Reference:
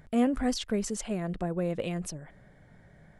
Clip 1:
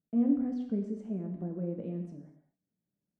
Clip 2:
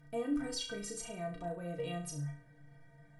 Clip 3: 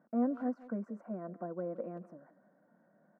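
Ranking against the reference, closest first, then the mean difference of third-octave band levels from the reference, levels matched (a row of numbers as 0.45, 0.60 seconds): 2, 3, 1; 5.5, 7.0, 10.0 decibels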